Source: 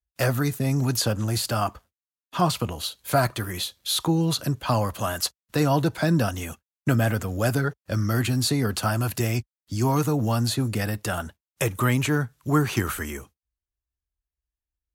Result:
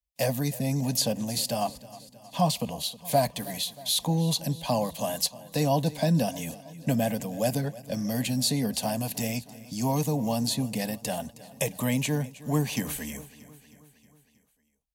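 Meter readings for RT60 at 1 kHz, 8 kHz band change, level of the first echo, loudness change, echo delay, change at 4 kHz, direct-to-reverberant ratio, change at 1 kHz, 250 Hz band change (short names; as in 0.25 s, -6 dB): none, 0.0 dB, -18.5 dB, -3.5 dB, 0.316 s, -1.0 dB, none, -4.0 dB, -2.5 dB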